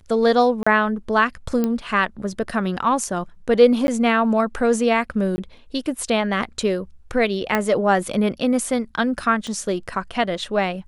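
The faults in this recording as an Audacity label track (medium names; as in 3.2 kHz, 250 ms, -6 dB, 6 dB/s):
0.630000	0.670000	dropout 35 ms
1.640000	1.640000	pop -10 dBFS
3.870000	3.880000	dropout 11 ms
5.360000	5.380000	dropout 20 ms
7.550000	7.550000	pop -6 dBFS
9.470000	9.470000	pop -19 dBFS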